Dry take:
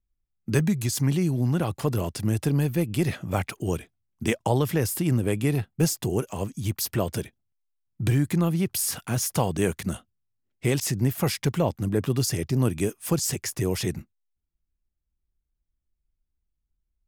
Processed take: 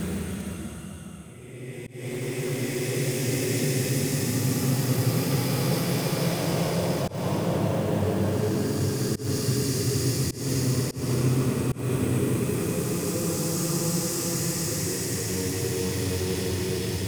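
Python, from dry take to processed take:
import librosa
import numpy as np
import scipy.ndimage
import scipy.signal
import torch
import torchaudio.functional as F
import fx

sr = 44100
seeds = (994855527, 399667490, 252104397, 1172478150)

p1 = fx.vibrato(x, sr, rate_hz=0.48, depth_cents=7.3)
p2 = fx.paulstretch(p1, sr, seeds[0], factor=4.3, window_s=1.0, from_s=9.95)
p3 = fx.auto_swell(p2, sr, attack_ms=198.0)
p4 = (np.mod(10.0 ** (26.5 / 20.0) * p3 + 1.0, 2.0) - 1.0) / 10.0 ** (26.5 / 20.0)
y = p3 + F.gain(torch.from_numpy(p4), -12.0).numpy()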